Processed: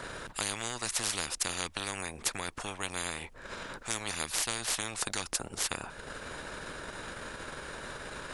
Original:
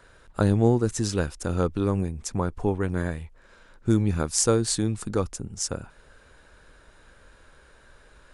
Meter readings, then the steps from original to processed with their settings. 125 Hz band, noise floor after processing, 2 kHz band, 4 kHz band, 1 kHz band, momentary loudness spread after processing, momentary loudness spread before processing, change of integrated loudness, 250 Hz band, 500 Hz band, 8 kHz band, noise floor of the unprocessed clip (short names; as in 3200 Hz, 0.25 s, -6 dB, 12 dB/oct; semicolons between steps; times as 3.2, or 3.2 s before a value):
-20.5 dB, -51 dBFS, +3.5 dB, +2.0 dB, -3.5 dB, 11 LU, 10 LU, -9.5 dB, -18.5 dB, -15.0 dB, -2.5 dB, -55 dBFS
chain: transient shaper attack +2 dB, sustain -6 dB; spectral compressor 10:1; gain -7.5 dB